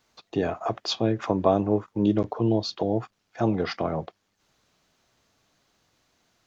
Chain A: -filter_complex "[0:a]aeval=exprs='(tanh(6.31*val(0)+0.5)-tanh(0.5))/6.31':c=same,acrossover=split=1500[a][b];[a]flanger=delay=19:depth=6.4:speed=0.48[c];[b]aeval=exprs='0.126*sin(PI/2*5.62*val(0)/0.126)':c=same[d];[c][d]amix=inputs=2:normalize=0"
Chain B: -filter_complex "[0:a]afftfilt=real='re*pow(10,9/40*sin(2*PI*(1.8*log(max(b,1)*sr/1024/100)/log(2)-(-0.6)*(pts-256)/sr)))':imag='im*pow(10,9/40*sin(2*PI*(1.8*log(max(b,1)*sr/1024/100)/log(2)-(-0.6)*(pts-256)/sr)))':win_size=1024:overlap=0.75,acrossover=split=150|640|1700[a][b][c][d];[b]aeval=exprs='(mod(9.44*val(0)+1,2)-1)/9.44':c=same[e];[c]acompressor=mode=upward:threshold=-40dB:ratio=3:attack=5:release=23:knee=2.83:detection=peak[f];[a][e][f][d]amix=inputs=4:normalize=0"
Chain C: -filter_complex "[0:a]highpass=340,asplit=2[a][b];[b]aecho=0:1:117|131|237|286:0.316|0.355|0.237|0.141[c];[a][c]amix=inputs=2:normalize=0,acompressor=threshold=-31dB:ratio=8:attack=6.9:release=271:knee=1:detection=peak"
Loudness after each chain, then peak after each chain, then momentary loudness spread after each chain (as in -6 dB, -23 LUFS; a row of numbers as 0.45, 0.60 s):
-26.0, -27.0, -36.5 LUFS; -10.0, -11.5, -19.5 dBFS; 9, 7, 5 LU